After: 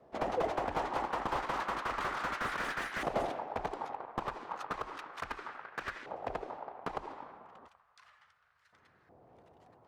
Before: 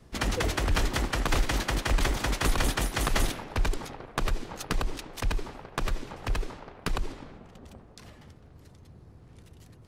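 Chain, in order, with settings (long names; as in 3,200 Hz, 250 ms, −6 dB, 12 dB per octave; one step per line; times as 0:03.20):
auto-filter band-pass saw up 0.33 Hz 640–1,700 Hz
0:07.68–0:08.73: guitar amp tone stack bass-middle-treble 10-0-10
slew-rate limiting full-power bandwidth 16 Hz
level +6.5 dB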